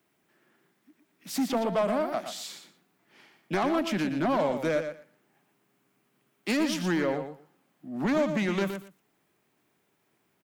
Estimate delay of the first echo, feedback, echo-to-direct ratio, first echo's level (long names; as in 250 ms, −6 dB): 118 ms, 16%, −8.5 dB, −8.5 dB